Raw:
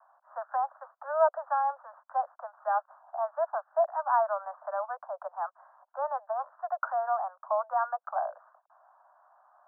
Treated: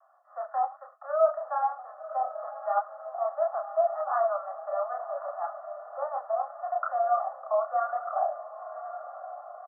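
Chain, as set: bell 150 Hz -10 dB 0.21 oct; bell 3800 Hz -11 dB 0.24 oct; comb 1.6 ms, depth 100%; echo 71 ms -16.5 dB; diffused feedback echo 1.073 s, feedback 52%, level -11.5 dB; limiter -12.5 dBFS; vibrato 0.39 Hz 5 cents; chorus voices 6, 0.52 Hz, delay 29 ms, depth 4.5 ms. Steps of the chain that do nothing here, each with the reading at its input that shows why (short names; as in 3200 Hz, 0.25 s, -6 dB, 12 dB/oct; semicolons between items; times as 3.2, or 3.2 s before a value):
bell 150 Hz: input band starts at 480 Hz; bell 3800 Hz: input band ends at 1700 Hz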